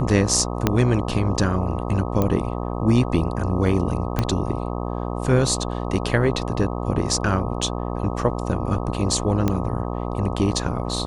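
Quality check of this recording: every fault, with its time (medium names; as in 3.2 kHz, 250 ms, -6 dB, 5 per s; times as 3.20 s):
buzz 60 Hz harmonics 21 -27 dBFS
0.67 s: pop -3 dBFS
2.22 s: pop -9 dBFS
4.19 s: pop -7 dBFS
7.62 s: dropout 4.4 ms
9.48 s: pop -9 dBFS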